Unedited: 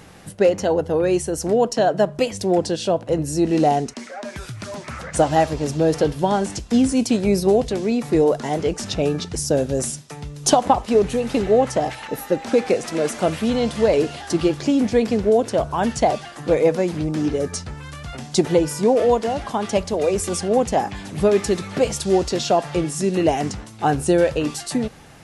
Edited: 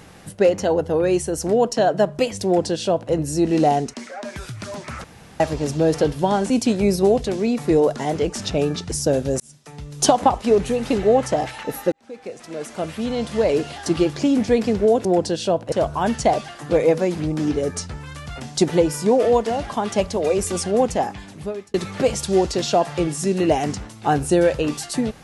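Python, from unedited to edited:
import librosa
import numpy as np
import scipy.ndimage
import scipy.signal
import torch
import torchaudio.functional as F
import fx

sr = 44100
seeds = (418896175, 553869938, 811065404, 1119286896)

y = fx.edit(x, sr, fx.duplicate(start_s=2.45, length_s=0.67, to_s=15.49),
    fx.room_tone_fill(start_s=5.04, length_s=0.36),
    fx.cut(start_s=6.5, length_s=0.44),
    fx.fade_in_span(start_s=9.84, length_s=0.55),
    fx.fade_in_span(start_s=12.36, length_s=1.9),
    fx.fade_out_span(start_s=20.6, length_s=0.91), tone=tone)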